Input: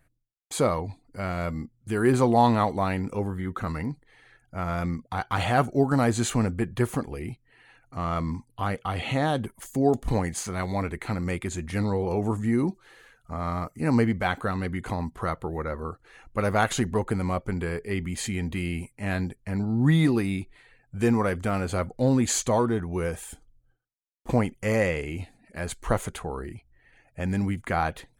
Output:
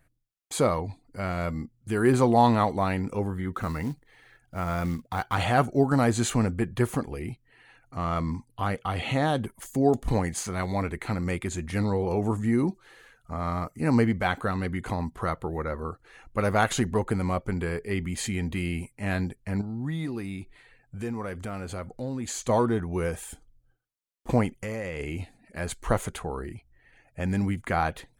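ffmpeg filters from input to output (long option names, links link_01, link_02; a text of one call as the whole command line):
ffmpeg -i in.wav -filter_complex "[0:a]asplit=3[link_01][link_02][link_03];[link_01]afade=type=out:start_time=3.53:duration=0.02[link_04];[link_02]acrusher=bits=6:mode=log:mix=0:aa=0.000001,afade=type=in:start_time=3.53:duration=0.02,afade=type=out:start_time=5.34:duration=0.02[link_05];[link_03]afade=type=in:start_time=5.34:duration=0.02[link_06];[link_04][link_05][link_06]amix=inputs=3:normalize=0,asettb=1/sr,asplit=3[link_07][link_08][link_09];[link_07]atrim=end=19.614[link_10];[link_08]atrim=start=19.61:end=22.49,asetpts=PTS-STARTPTS,afade=type=in:duration=0.004:curve=qsin,afade=type=out:start_time=2.876:duration=0.004:curve=qsin,acompressor=threshold=-37dB:ratio=2:attack=3.2:release=140:knee=1:detection=peak[link_11];[link_09]atrim=start=22.486[link_12];[link_10][link_11]acrossfade=duration=0.004:curve1=hsin:curve2=qsin[link_13];[link_13][link_12]acrossfade=duration=0.004:curve1=qsin:curve2=hsin,asplit=3[link_14][link_15][link_16];[link_14]afade=type=out:start_time=24.56:duration=0.02[link_17];[link_15]acompressor=threshold=-30dB:ratio=6:attack=3.2:release=140:knee=1:detection=peak,afade=type=in:start_time=24.56:duration=0.02,afade=type=out:start_time=24.99:duration=0.02[link_18];[link_16]afade=type=in:start_time=24.99:duration=0.02[link_19];[link_17][link_18][link_19]amix=inputs=3:normalize=0" out.wav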